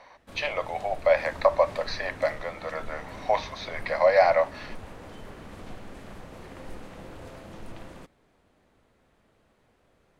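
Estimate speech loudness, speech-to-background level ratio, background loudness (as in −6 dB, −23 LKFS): −26.0 LKFS, 18.5 dB, −44.5 LKFS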